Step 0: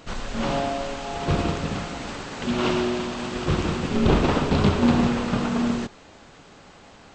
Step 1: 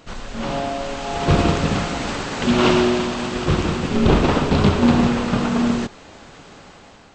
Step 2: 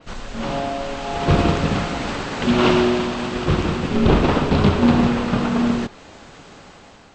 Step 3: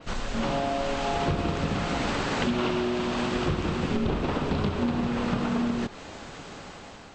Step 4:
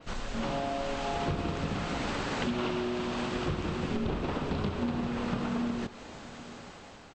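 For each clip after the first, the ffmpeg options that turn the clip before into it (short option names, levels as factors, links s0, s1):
-af "dynaudnorm=f=410:g=5:m=3.76,volume=0.891"
-af "adynamicequalizer=threshold=0.00501:dfrequency=7300:dqfactor=1:tfrequency=7300:tqfactor=1:attack=5:release=100:ratio=0.375:range=2.5:mode=cutabove:tftype=bell"
-af "acompressor=threshold=0.0631:ratio=12,volume=1.12"
-filter_complex "[0:a]asplit=2[s0][s1];[s1]adelay=816.3,volume=0.112,highshelf=f=4000:g=-18.4[s2];[s0][s2]amix=inputs=2:normalize=0,volume=0.562"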